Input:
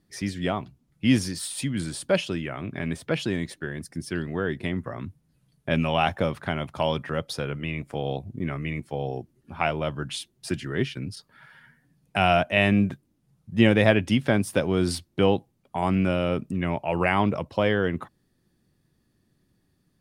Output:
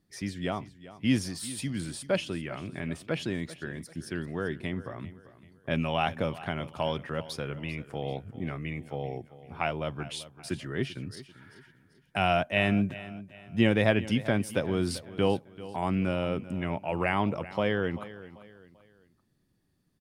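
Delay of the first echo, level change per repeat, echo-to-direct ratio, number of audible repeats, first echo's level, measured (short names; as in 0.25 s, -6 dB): 0.39 s, -8.5 dB, -16.0 dB, 3, -16.5 dB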